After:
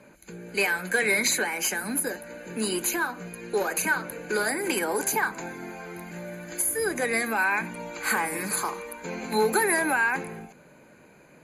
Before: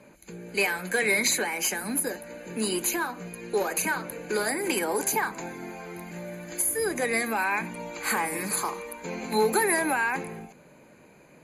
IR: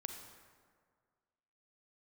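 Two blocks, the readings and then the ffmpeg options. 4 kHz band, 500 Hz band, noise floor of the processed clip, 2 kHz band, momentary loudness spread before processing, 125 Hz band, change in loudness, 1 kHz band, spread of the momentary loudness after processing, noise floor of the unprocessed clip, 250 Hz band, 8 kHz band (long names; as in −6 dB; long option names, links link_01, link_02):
0.0 dB, 0.0 dB, −54 dBFS, +2.5 dB, 15 LU, 0.0 dB, +1.0 dB, +0.5 dB, 16 LU, −54 dBFS, 0.0 dB, 0.0 dB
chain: -af "equalizer=frequency=1500:width_type=o:width=0.27:gain=5.5"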